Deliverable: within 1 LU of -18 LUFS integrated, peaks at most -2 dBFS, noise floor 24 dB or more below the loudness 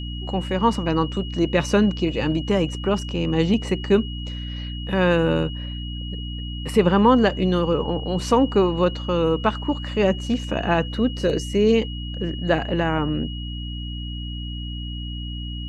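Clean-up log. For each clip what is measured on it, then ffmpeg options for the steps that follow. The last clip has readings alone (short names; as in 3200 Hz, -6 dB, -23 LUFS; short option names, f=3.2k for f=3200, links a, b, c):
hum 60 Hz; harmonics up to 300 Hz; hum level -28 dBFS; steady tone 2900 Hz; tone level -36 dBFS; loudness -22.5 LUFS; peak -4.5 dBFS; loudness target -18.0 LUFS
-> -af "bandreject=f=60:t=h:w=4,bandreject=f=120:t=h:w=4,bandreject=f=180:t=h:w=4,bandreject=f=240:t=h:w=4,bandreject=f=300:t=h:w=4"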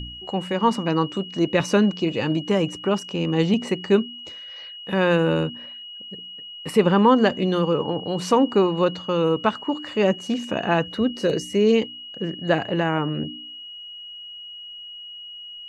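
hum none; steady tone 2900 Hz; tone level -36 dBFS
-> -af "bandreject=f=2.9k:w=30"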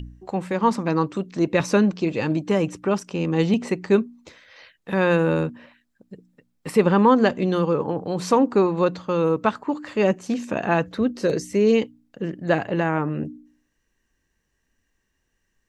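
steady tone none; loudness -22.0 LUFS; peak -4.5 dBFS; loudness target -18.0 LUFS
-> -af "volume=4dB,alimiter=limit=-2dB:level=0:latency=1"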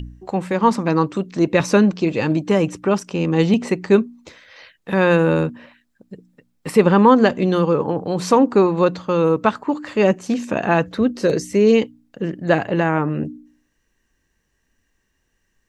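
loudness -18.0 LUFS; peak -2.0 dBFS; noise floor -69 dBFS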